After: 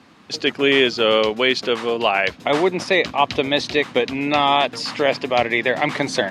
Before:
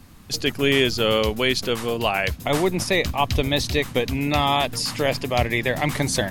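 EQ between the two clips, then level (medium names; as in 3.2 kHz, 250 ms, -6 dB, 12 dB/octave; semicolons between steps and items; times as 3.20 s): band-pass 270–4000 Hz; +4.5 dB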